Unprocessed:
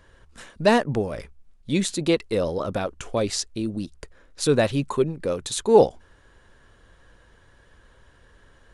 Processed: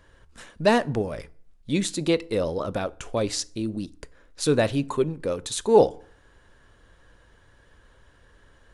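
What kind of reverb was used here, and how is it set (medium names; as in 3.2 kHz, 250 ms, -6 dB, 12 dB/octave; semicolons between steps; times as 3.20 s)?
FDN reverb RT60 0.54 s, low-frequency decay 1.1×, high-frequency decay 0.7×, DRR 17.5 dB; trim -1.5 dB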